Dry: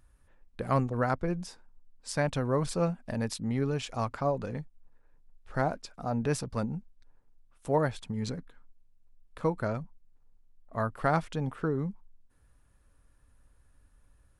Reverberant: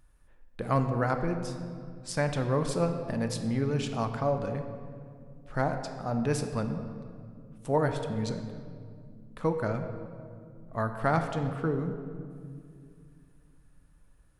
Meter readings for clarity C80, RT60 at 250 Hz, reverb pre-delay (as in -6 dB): 8.5 dB, 3.2 s, 3 ms